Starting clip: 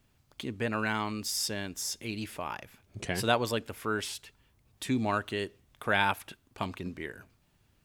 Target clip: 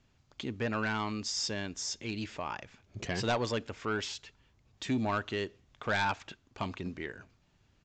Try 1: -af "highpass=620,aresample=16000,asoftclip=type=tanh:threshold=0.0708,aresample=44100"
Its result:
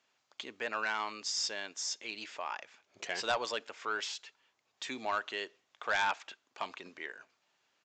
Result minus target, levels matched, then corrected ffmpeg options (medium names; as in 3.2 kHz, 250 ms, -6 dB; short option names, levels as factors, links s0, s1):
500 Hz band -2.5 dB
-af "aresample=16000,asoftclip=type=tanh:threshold=0.0708,aresample=44100"